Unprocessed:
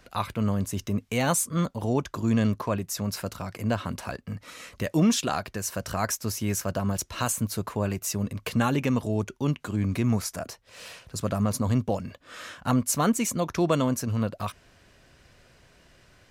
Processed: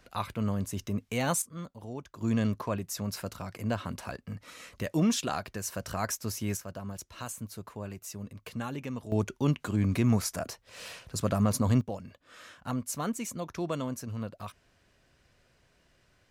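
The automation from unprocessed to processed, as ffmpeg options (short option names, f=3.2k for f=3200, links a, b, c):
-af "asetnsamples=n=441:p=0,asendcmd='1.42 volume volume -14.5dB;2.21 volume volume -4.5dB;6.57 volume volume -12dB;9.12 volume volume -0.5dB;11.81 volume volume -9.5dB',volume=-4.5dB"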